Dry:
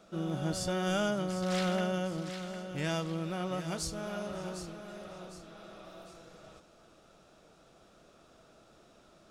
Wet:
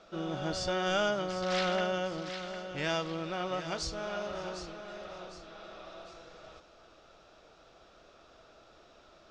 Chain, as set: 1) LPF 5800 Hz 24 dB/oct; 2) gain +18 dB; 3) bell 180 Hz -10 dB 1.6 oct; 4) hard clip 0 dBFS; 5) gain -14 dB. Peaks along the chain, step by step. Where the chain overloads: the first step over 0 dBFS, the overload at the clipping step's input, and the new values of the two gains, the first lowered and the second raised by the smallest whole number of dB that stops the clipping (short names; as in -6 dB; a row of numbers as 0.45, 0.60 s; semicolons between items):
-20.5, -2.5, -4.5, -4.5, -18.5 dBFS; no overload